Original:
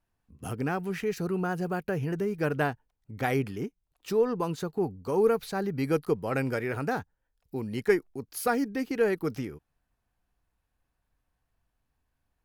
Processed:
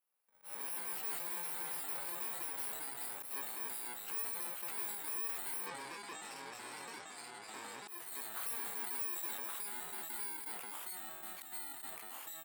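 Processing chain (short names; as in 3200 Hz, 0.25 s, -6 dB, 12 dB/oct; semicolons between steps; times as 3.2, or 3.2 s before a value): FFT order left unsorted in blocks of 64 samples; compressor 6:1, threshold -32 dBFS, peak gain reduction 14 dB; echo 0.19 s -22 dB; echoes that change speed 0.101 s, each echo -2 st, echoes 3; 5.66–7.88 steep low-pass 8600 Hz 72 dB/oct; soft clip -34 dBFS, distortion -11 dB; HPF 740 Hz 12 dB/oct; bell 5700 Hz -12.5 dB 1.1 oct; doubler 23 ms -13 dB; auto swell 0.124 s; sustainer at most 31 dB/s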